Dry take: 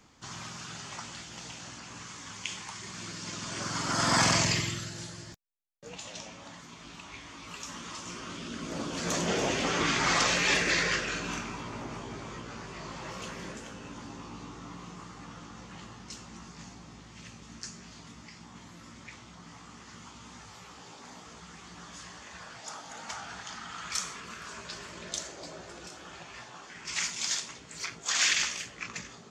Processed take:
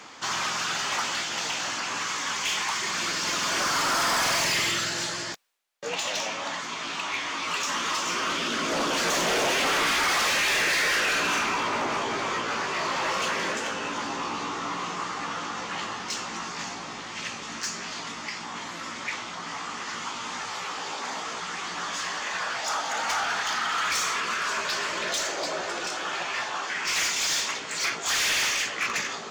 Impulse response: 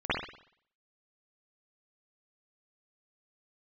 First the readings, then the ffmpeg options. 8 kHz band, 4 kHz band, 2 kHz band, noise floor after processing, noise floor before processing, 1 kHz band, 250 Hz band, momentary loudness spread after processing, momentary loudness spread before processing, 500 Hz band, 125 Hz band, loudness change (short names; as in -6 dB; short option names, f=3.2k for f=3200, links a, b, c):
+5.5 dB, +7.0 dB, +8.0 dB, -37 dBFS, -51 dBFS, +9.5 dB, +1.5 dB, 11 LU, 23 LU, +6.0 dB, -5.0 dB, +5.0 dB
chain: -filter_complex "[0:a]asplit=2[a][b];[b]highpass=f=720:p=1,volume=29dB,asoftclip=type=tanh:threshold=-11dB[c];[a][c]amix=inputs=2:normalize=0,lowpass=f=4.3k:p=1,volume=-6dB,areverse,acompressor=mode=upward:threshold=-38dB:ratio=2.5,areverse,volume=18.5dB,asoftclip=hard,volume=-18.5dB,bass=f=250:g=-5,treble=f=4k:g=-1,volume=-3.5dB"